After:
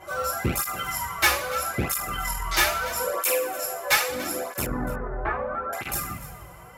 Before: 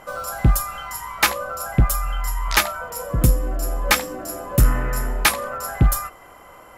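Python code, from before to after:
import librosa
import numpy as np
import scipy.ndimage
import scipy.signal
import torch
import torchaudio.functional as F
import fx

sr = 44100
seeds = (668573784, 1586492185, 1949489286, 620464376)

y = fx.rattle_buzz(x, sr, strikes_db=-12.0, level_db=-17.0)
y = fx.highpass(y, sr, hz=450.0, slope=24, at=(3.1, 4.09))
y = fx.rider(y, sr, range_db=4, speed_s=0.5)
y = fx.rev_double_slope(y, sr, seeds[0], early_s=0.4, late_s=2.1, knee_db=-19, drr_db=-6.0)
y = fx.tube_stage(y, sr, drive_db=6.0, bias=0.4)
y = fx.lowpass(y, sr, hz=1400.0, slope=24, at=(4.66, 5.73))
y = y + 10.0 ** (-17.0 / 20.0) * np.pad(y, (int(291 * sr / 1000.0), 0))[:len(y)]
y = fx.flanger_cancel(y, sr, hz=0.77, depth_ms=4.6)
y = y * 10.0 ** (-3.0 / 20.0)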